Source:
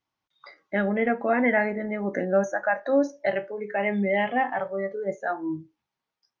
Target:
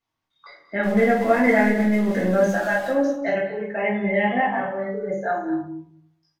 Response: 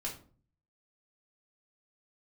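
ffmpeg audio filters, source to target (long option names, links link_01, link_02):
-filter_complex "[0:a]asettb=1/sr,asplit=3[link_01][link_02][link_03];[link_01]atrim=end=0.834[link_04];[link_02]atrim=start=0.83:end=2.91,asetpts=PTS-STARTPTS,afade=type=in:duration=0.004:curve=qsin,afade=type=out:start_time=2.076:duration=0.004:curve=qsin,aeval=exprs='val(0)+0.5*0.0178*sgn(val(0))':channel_layout=same[link_05];[link_03]atrim=start=2.906[link_06];[link_04][link_05]acrossfade=duration=0.004:curve1=hsin:curve2=qsin[link_07];[link_07][link_06]acrossfade=duration=0.004:curve1=qsin:curve2=hsin,aecho=1:1:184|228:0.141|0.2[link_08];[1:a]atrim=start_sample=2205,asetrate=31752,aresample=44100[link_09];[link_08][link_09]afir=irnorm=-1:irlink=0"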